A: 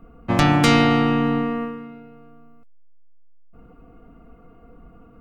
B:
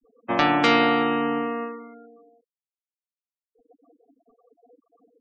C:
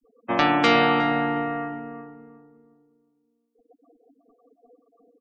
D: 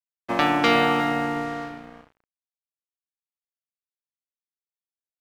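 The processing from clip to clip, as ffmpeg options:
-filter_complex "[0:a]acrossover=split=270 4400:gain=0.0891 1 0.141[a][b][c];[a][b][c]amix=inputs=3:normalize=0,afftfilt=real='re*gte(hypot(re,im),0.0126)':imag='im*gte(hypot(re,im),0.0126)':win_size=1024:overlap=0.75"
-filter_complex "[0:a]asplit=2[a][b];[b]adelay=361,lowpass=f=820:p=1,volume=-5dB,asplit=2[c][d];[d]adelay=361,lowpass=f=820:p=1,volume=0.37,asplit=2[e][f];[f]adelay=361,lowpass=f=820:p=1,volume=0.37,asplit=2[g][h];[h]adelay=361,lowpass=f=820:p=1,volume=0.37,asplit=2[i][j];[j]adelay=361,lowpass=f=820:p=1,volume=0.37[k];[a][c][e][g][i][k]amix=inputs=6:normalize=0"
-af "aeval=exprs='sgn(val(0))*max(abs(val(0))-0.0126,0)':c=same"

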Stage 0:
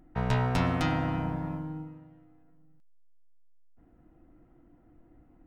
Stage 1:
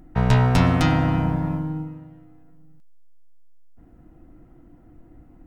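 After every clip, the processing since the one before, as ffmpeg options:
-af "bass=f=250:g=4,treble=f=4k:g=3,volume=7dB"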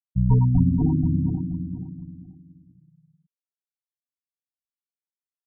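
-filter_complex "[0:a]afftfilt=real='re*gte(hypot(re,im),0.398)':imag='im*gte(hypot(re,im),0.398)':win_size=1024:overlap=0.75,asplit=2[a][b];[b]adelay=480,lowpass=f=2k:p=1,volume=-8.5dB,asplit=2[c][d];[d]adelay=480,lowpass=f=2k:p=1,volume=0.29,asplit=2[e][f];[f]adelay=480,lowpass=f=2k:p=1,volume=0.29[g];[a][c][e][g]amix=inputs=4:normalize=0"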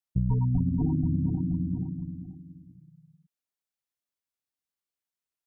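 -af "acompressor=threshold=-26dB:ratio=4,volume=2.5dB"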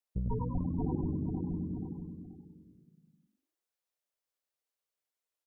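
-filter_complex "[0:a]equalizer=f=125:t=o:w=1:g=-11,equalizer=f=250:t=o:w=1:g=-6,equalizer=f=500:t=o:w=1:g=8,asplit=2[a][b];[b]asplit=4[c][d][e][f];[c]adelay=95,afreqshift=50,volume=-6dB[g];[d]adelay=190,afreqshift=100,volume=-15.9dB[h];[e]adelay=285,afreqshift=150,volume=-25.8dB[i];[f]adelay=380,afreqshift=200,volume=-35.7dB[j];[g][h][i][j]amix=inputs=4:normalize=0[k];[a][k]amix=inputs=2:normalize=0,volume=-1.5dB"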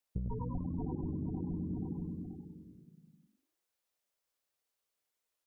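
-af "acompressor=threshold=-38dB:ratio=6,volume=4dB"

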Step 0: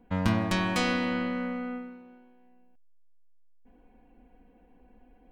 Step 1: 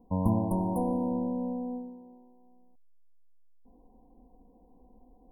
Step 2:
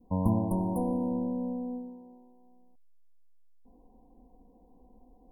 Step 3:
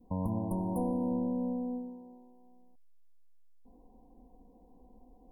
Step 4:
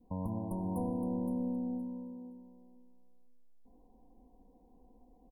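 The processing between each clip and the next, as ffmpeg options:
-af "afftfilt=real='re*(1-between(b*sr/4096,1100,9000))':imag='im*(1-between(b*sr/4096,1100,9000))':win_size=4096:overlap=0.75"
-af "adynamicequalizer=threshold=0.00501:dfrequency=840:dqfactor=1.2:tfrequency=840:tqfactor=1.2:attack=5:release=100:ratio=0.375:range=2:mode=cutabove:tftype=bell"
-af "alimiter=limit=-23dB:level=0:latency=1:release=324"
-af "aecho=1:1:517|1034|1551:0.355|0.0674|0.0128,volume=-4dB"

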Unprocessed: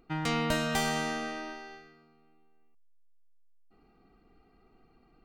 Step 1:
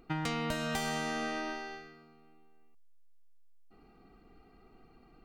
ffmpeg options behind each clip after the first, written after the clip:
-af "acompressor=threshold=-34dB:ratio=10,volume=3.5dB"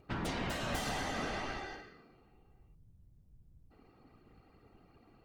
-af "aeval=exprs='0.126*(cos(1*acos(clip(val(0)/0.126,-1,1)))-cos(1*PI/2))+0.0562*(cos(5*acos(clip(val(0)/0.126,-1,1)))-cos(5*PI/2))+0.0447*(cos(8*acos(clip(val(0)/0.126,-1,1)))-cos(8*PI/2))':c=same,afftfilt=real='hypot(re,im)*cos(2*PI*random(0))':imag='hypot(re,im)*sin(2*PI*random(1))':win_size=512:overlap=0.75,volume=-6.5dB"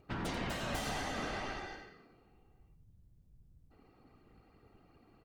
-af "aecho=1:1:88:0.316,volume=-1.5dB"

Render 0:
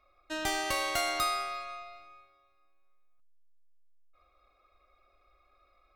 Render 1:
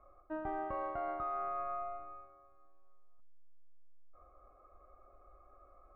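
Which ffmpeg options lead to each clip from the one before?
-af "lowpass=f=1.2k:w=0.5412,lowpass=f=1.2k:w=1.3066,areverse,acompressor=threshold=-43dB:ratio=16,areverse,volume=8dB"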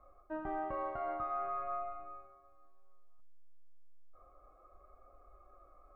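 -af "flanger=delay=3.8:depth=5.4:regen=-46:speed=0.39:shape=triangular,volume=4dB"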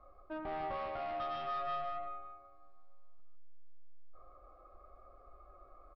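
-af "aresample=11025,asoftclip=type=tanh:threshold=-38dB,aresample=44100,aecho=1:1:152:0.531,volume=2dB"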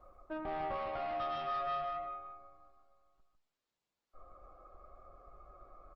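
-af "volume=1.5dB" -ar 48000 -c:a libopus -b:a 20k

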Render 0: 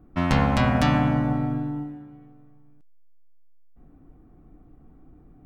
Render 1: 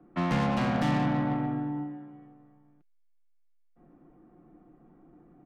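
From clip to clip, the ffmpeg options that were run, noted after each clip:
-filter_complex "[0:a]acrossover=split=170 3200:gain=0.126 1 0.0891[a][b][c];[a][b][c]amix=inputs=3:normalize=0,aecho=1:1:5.7:0.41,acrossover=split=270[d][e];[e]asoftclip=type=tanh:threshold=-29dB[f];[d][f]amix=inputs=2:normalize=0"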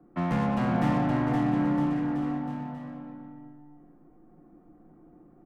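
-filter_complex "[0:a]equalizer=f=4.4k:t=o:w=2.1:g=-8.5,asplit=2[a][b];[b]adelay=24,volume=-12dB[c];[a][c]amix=inputs=2:normalize=0,asplit=2[d][e];[e]aecho=0:1:520|962|1338|1657|1928:0.631|0.398|0.251|0.158|0.1[f];[d][f]amix=inputs=2:normalize=0"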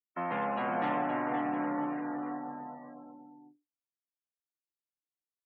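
-af "agate=range=-20dB:threshold=-46dB:ratio=16:detection=peak,afftdn=nr=35:nf=-46,highpass=450"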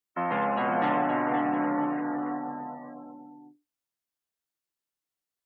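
-af "bandreject=f=2.4k:w=26,volume=5.5dB"

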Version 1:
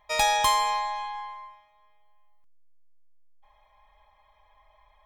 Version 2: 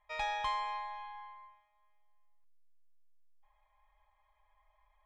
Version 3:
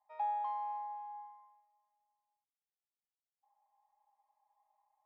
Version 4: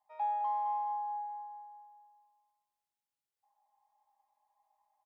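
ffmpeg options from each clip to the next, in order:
-af "lowpass=2.3k,equalizer=f=260:t=o:w=3:g=-11.5,volume=-7.5dB"
-af "bandpass=f=800:t=q:w=8.7:csg=0,volume=4dB"
-filter_complex "[0:a]asplit=2[a][b];[b]adelay=18,volume=-10.5dB[c];[a][c]amix=inputs=2:normalize=0,asplit=2[d][e];[e]aecho=0:1:212|424|636|848|1060|1272:0.398|0.199|0.0995|0.0498|0.0249|0.0124[f];[d][f]amix=inputs=2:normalize=0"

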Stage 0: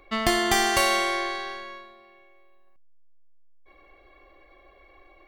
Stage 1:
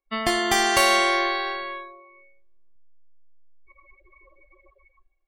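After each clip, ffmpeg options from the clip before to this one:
-af "dynaudnorm=f=220:g=7:m=9.5dB,afftdn=nr=35:nf=-34,lowshelf=f=140:g=-7"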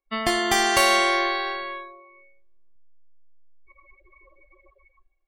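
-af anull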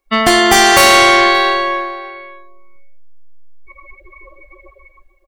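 -filter_complex "[0:a]asplit=2[a][b];[b]aeval=exprs='0.531*sin(PI/2*3.98*val(0)/0.531)':c=same,volume=-11dB[c];[a][c]amix=inputs=2:normalize=0,asplit=2[d][e];[e]adelay=577.3,volume=-17dB,highshelf=f=4k:g=-13[f];[d][f]amix=inputs=2:normalize=0,volume=6dB"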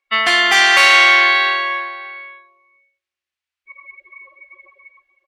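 -af "bandpass=f=2.3k:t=q:w=1.3:csg=0,volume=2.5dB"

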